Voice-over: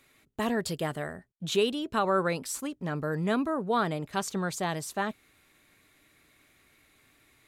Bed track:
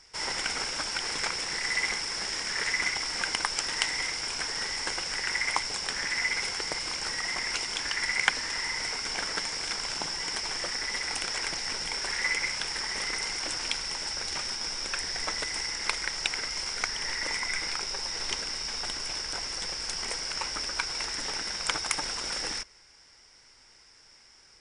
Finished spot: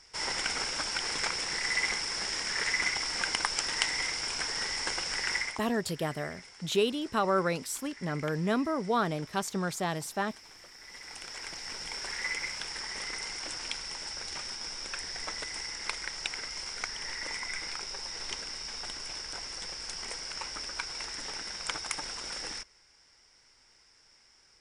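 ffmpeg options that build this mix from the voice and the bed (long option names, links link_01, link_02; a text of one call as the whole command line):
ffmpeg -i stem1.wav -i stem2.wav -filter_complex "[0:a]adelay=5200,volume=-1dB[link_01];[1:a]volume=13dB,afade=type=out:start_time=5.35:duration=0.24:silence=0.11885,afade=type=in:start_time=10.76:duration=1.21:silence=0.199526[link_02];[link_01][link_02]amix=inputs=2:normalize=0" out.wav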